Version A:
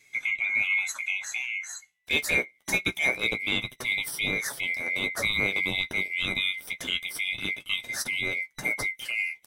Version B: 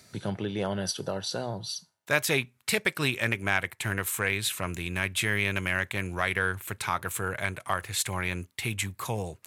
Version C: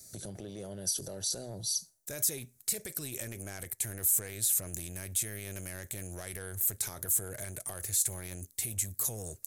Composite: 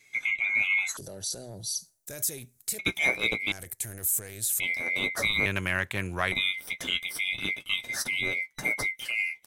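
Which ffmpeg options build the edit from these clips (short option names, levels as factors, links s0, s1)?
-filter_complex "[2:a]asplit=2[s0][s1];[0:a]asplit=4[s2][s3][s4][s5];[s2]atrim=end=0.972[s6];[s0]atrim=start=0.968:end=2.792[s7];[s3]atrim=start=2.788:end=3.522[s8];[s1]atrim=start=3.518:end=4.602[s9];[s4]atrim=start=4.598:end=5.462[s10];[1:a]atrim=start=5.458:end=6.322[s11];[s5]atrim=start=6.318[s12];[s6][s7]acrossfade=d=0.004:c1=hsin:c2=hsin[s13];[s13][s8]acrossfade=d=0.004:c1=hsin:c2=hsin[s14];[s14][s9]acrossfade=d=0.004:c1=hsin:c2=hsin[s15];[s15][s10]acrossfade=d=0.004:c1=hsin:c2=hsin[s16];[s16][s11]acrossfade=d=0.004:c1=hsin:c2=hsin[s17];[s17][s12]acrossfade=d=0.004:c1=hsin:c2=hsin"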